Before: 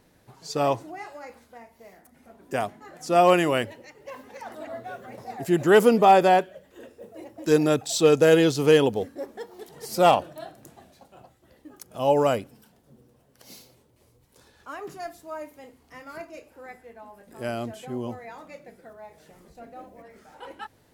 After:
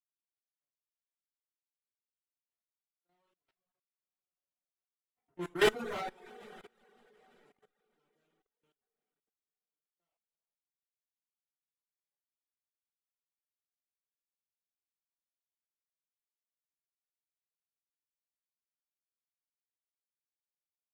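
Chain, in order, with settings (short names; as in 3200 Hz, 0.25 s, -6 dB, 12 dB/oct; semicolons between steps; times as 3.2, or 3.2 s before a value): Wiener smoothing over 9 samples; Doppler pass-by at 5.5, 8 m/s, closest 2.9 m; feedback echo 80 ms, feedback 32%, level -14.5 dB; power-law curve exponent 3; two-slope reverb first 0.29 s, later 3.5 s, from -22 dB, DRR -9.5 dB; level quantiser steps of 14 dB; reverb removal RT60 0.56 s; gain -8 dB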